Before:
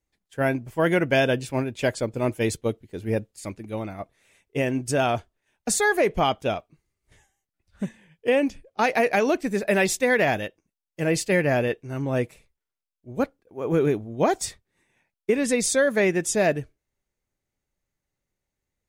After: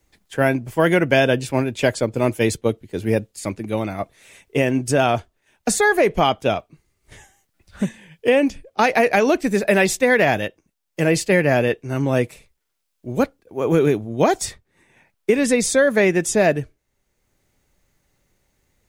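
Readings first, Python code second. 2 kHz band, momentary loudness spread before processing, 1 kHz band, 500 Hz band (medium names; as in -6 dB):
+5.0 dB, 13 LU, +5.0 dB, +5.0 dB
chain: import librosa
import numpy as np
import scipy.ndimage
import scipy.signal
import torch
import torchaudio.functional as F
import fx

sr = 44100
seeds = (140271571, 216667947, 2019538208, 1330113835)

y = fx.band_squash(x, sr, depth_pct=40)
y = y * librosa.db_to_amplitude(5.0)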